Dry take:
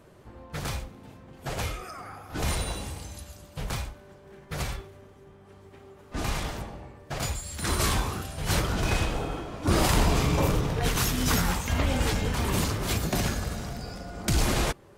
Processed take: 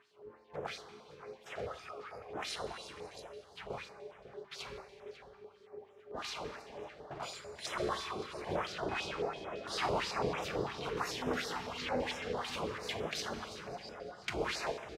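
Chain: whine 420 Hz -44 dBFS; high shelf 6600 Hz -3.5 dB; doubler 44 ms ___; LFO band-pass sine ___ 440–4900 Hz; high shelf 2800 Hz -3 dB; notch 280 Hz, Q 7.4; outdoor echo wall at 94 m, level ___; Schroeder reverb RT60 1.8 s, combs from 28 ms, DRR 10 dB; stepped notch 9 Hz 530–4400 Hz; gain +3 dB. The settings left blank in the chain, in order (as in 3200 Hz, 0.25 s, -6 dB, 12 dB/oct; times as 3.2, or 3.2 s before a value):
-12 dB, 2.9 Hz, -11 dB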